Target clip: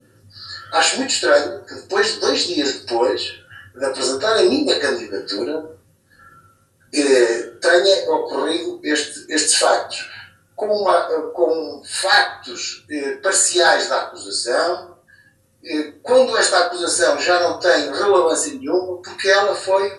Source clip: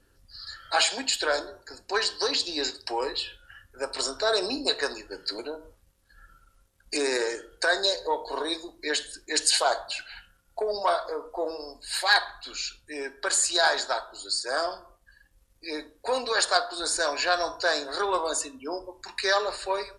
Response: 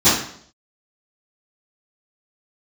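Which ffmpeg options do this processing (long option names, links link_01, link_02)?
-filter_complex "[0:a]bass=frequency=250:gain=6,treble=frequency=4000:gain=1[link_01];[1:a]atrim=start_sample=2205,afade=type=out:start_time=0.21:duration=0.01,atrim=end_sample=9702,asetrate=70560,aresample=44100[link_02];[link_01][link_02]afir=irnorm=-1:irlink=0,volume=-11.5dB"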